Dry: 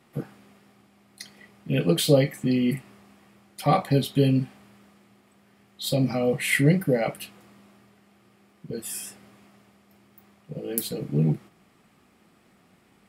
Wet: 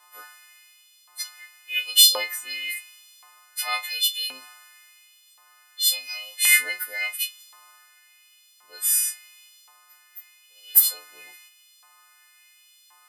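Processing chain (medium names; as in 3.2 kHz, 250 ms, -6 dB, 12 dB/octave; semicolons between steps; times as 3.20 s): partials quantised in pitch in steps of 3 st; high-order bell 550 Hz +11 dB 2.3 oct; LFO high-pass saw up 0.93 Hz 1–3.9 kHz; tilt shelf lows -8.5 dB, about 1.2 kHz; trim -7 dB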